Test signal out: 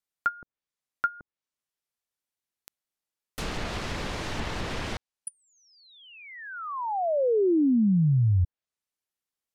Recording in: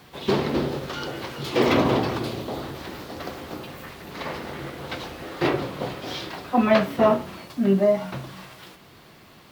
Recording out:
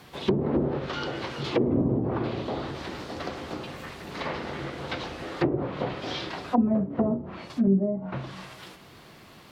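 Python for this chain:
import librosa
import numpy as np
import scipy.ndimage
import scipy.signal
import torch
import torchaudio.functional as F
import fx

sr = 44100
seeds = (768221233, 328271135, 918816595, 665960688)

y = fx.env_lowpass_down(x, sr, base_hz=310.0, full_db=-17.5)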